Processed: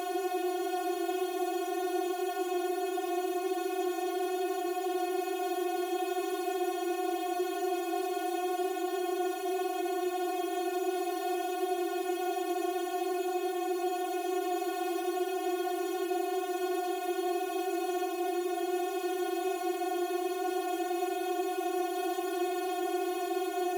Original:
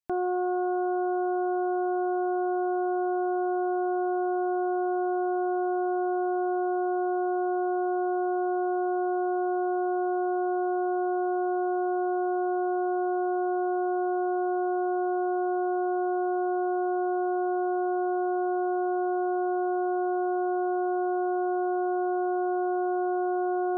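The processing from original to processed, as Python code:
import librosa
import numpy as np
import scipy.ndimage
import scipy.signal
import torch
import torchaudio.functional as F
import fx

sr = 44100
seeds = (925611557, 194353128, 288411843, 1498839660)

y = fx.quant_dither(x, sr, seeds[0], bits=6, dither='none')
y = fx.cheby_harmonics(y, sr, harmonics=(6,), levels_db=(-23,), full_scale_db=-24.0)
y = fx.paulstretch(y, sr, seeds[1], factor=7.4, window_s=0.05, from_s=6.87)
y = fx.rider(y, sr, range_db=10, speed_s=0.5)
y = F.gain(torch.from_numpy(y), -4.5).numpy()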